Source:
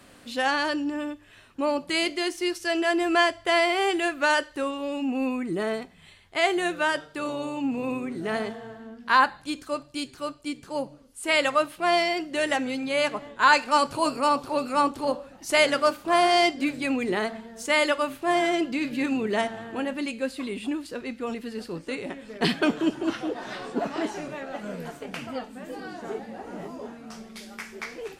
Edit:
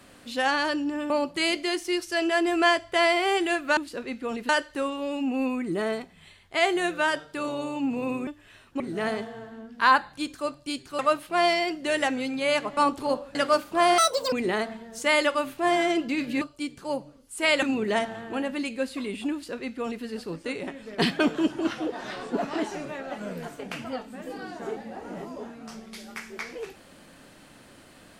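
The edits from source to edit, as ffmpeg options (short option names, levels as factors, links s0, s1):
-filter_complex "[0:a]asplit=13[s0][s1][s2][s3][s4][s5][s6][s7][s8][s9][s10][s11][s12];[s0]atrim=end=1.102[s13];[s1]atrim=start=1.628:end=4.302[s14];[s2]atrim=start=20.748:end=21.472[s15];[s3]atrim=start=4.298:end=8.082[s16];[s4]atrim=start=1.098:end=1.632[s17];[s5]atrim=start=8.078:end=10.272[s18];[s6]atrim=start=11.478:end=13.262[s19];[s7]atrim=start=14.748:end=15.332[s20];[s8]atrim=start=15.678:end=16.314[s21];[s9]atrim=start=16.31:end=16.96,asetpts=PTS-STARTPTS,asetrate=83349,aresample=44100[s22];[s10]atrim=start=16.956:end=19.052[s23];[s11]atrim=start=10.268:end=11.482[s24];[s12]atrim=start=19.048[s25];[s13][s14]acrossfade=d=0.004:c1=hsin:c2=hsin[s26];[s26][s15]acrossfade=d=0.004:c1=hsin:c2=hsin[s27];[s27][s16]acrossfade=d=0.004:c1=hsin:c2=hsin[s28];[s28][s17]acrossfade=d=0.004:c1=hsin:c2=hsin[s29];[s29][s18]acrossfade=d=0.004:c1=hsin:c2=hsin[s30];[s30][s19]acrossfade=d=0.004:c1=hsin:c2=hsin[s31];[s31][s20]acrossfade=d=0.004:c1=hsin:c2=hsin[s32];[s32][s21]acrossfade=d=0.004:c1=hsin:c2=hsin[s33];[s33][s22]acrossfade=d=0.004:c1=hsin:c2=hsin[s34];[s34][s23]acrossfade=d=0.004:c1=hsin:c2=hsin[s35];[s35][s24]acrossfade=d=0.004:c1=hsin:c2=hsin[s36];[s36][s25]acrossfade=d=0.004:c1=hsin:c2=hsin"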